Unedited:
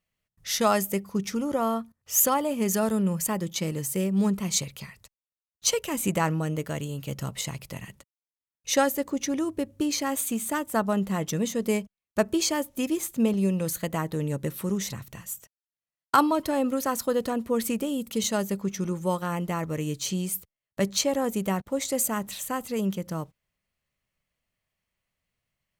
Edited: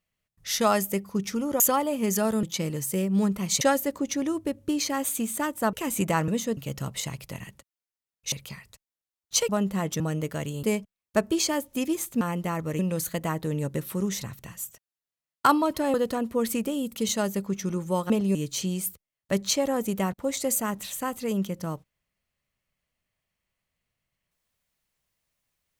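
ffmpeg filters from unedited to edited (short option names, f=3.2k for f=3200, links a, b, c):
-filter_complex "[0:a]asplit=16[a][b][c][d][e][f][g][h][i][j][k][l][m][n][o][p];[a]atrim=end=1.602[q];[b]atrim=start=2.178:end=3.012[r];[c]atrim=start=3.448:end=4.632[s];[d]atrim=start=8.728:end=10.852[t];[e]atrim=start=5.798:end=6.352[u];[f]atrim=start=11.358:end=11.652[v];[g]atrim=start=6.978:end=8.732[w];[h]atrim=start=4.628:end=5.802[x];[i]atrim=start=10.848:end=11.362[y];[j]atrim=start=6.348:end=6.982[z];[k]atrim=start=11.648:end=13.232[aa];[l]atrim=start=19.248:end=19.832[ab];[m]atrim=start=13.478:end=16.632[ac];[n]atrim=start=17.088:end=19.252[ad];[o]atrim=start=13.228:end=13.482[ae];[p]atrim=start=19.828[af];[q][r]acrossfade=d=0.004:c1=hsin:c2=hsin[ag];[ag][s]acrossfade=d=0.004:c1=hsin:c2=hsin[ah];[ah][t]acrossfade=d=0.004:c1=hsin:c2=hsin[ai];[ai][u]acrossfade=d=0.004:c1=hsin:c2=hsin[aj];[aj][v]acrossfade=d=0.004:c1=hsin:c2=hsin[ak];[ak][w]acrossfade=d=0.004:c1=hsin:c2=hsin[al];[al][x]acrossfade=d=0.004:c1=hsin:c2=hsin[am];[am][y]acrossfade=d=0.004:c1=hsin:c2=hsin[an];[an][z]acrossfade=d=0.004:c1=hsin:c2=hsin[ao];[ao][aa]acrossfade=d=0.004:c1=hsin:c2=hsin[ap];[ap][ab]acrossfade=d=0.004:c1=hsin:c2=hsin[aq];[aq][ac]acrossfade=d=0.004:c1=hsin:c2=hsin[ar];[ar][ad]acrossfade=d=0.004:c1=hsin:c2=hsin[as];[as][ae]acrossfade=d=0.004:c1=hsin:c2=hsin[at];[at][af]acrossfade=d=0.004:c1=hsin:c2=hsin"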